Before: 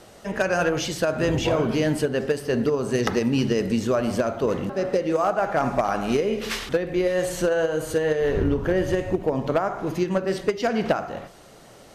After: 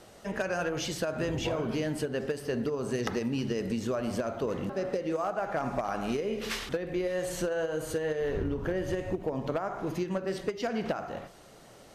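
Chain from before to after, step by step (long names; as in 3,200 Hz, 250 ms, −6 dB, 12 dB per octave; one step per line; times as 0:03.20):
downward compressor, threshold −22 dBFS, peak gain reduction 6.5 dB
level −5 dB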